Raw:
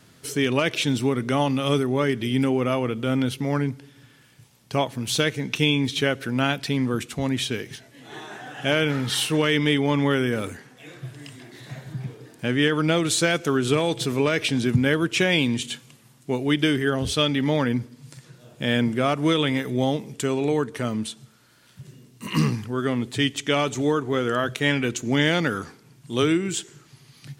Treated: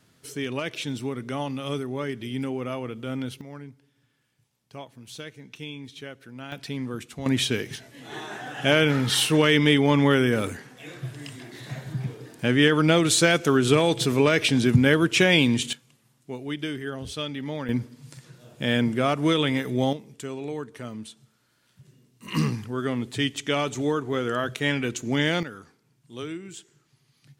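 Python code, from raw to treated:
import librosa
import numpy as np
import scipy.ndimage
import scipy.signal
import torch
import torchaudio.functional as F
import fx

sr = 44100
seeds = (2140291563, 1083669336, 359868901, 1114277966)

y = fx.gain(x, sr, db=fx.steps((0.0, -8.0), (3.41, -17.0), (6.52, -8.0), (7.26, 2.0), (15.73, -10.0), (17.69, -1.0), (19.93, -10.0), (22.28, -3.0), (25.43, -14.0)))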